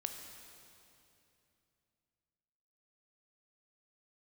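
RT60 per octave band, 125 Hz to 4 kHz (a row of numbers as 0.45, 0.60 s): 3.7, 3.3, 3.0, 2.7, 2.6, 2.5 s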